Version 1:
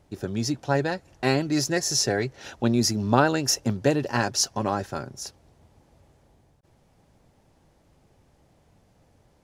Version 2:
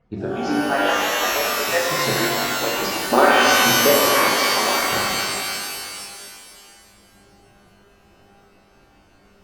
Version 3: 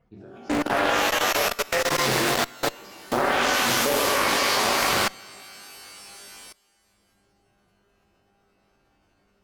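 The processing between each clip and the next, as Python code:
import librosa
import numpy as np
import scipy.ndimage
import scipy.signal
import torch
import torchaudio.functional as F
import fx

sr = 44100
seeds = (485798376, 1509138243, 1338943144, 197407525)

y1 = fx.hpss_only(x, sr, part='percussive')
y1 = scipy.signal.sosfilt(scipy.signal.butter(2, 2600.0, 'lowpass', fs=sr, output='sos'), y1)
y1 = fx.rev_shimmer(y1, sr, seeds[0], rt60_s=2.2, semitones=12, shimmer_db=-2, drr_db=-5.0)
y1 = y1 * librosa.db_to_amplitude(3.0)
y2 = fx.level_steps(y1, sr, step_db=22)
y2 = fx.cheby_harmonics(y2, sr, harmonics=(2,), levels_db=(-8,), full_scale_db=-9.0)
y2 = fx.doppler_dist(y2, sr, depth_ms=0.55)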